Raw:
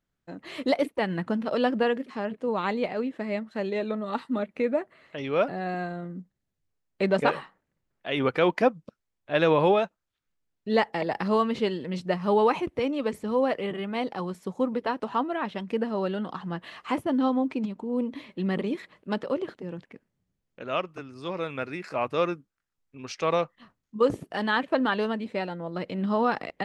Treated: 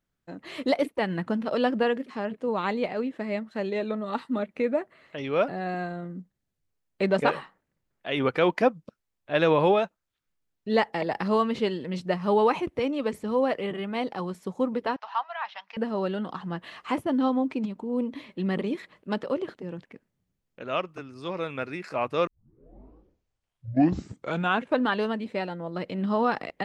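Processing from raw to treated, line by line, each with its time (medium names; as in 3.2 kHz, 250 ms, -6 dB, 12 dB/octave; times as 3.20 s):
14.96–15.77 s: elliptic band-pass 790–5600 Hz
22.27 s: tape start 2.61 s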